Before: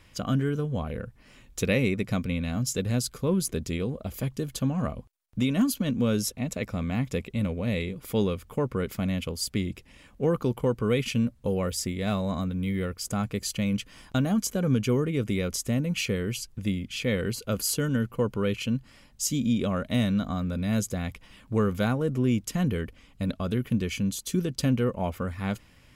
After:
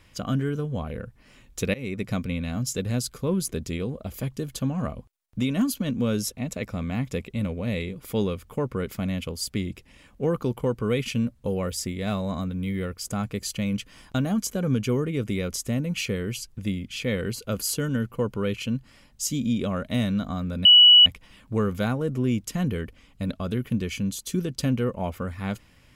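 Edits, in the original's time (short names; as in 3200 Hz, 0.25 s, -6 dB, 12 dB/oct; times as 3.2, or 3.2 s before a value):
1.74–2.05 fade in, from -22 dB
20.65–21.06 bleep 2940 Hz -9 dBFS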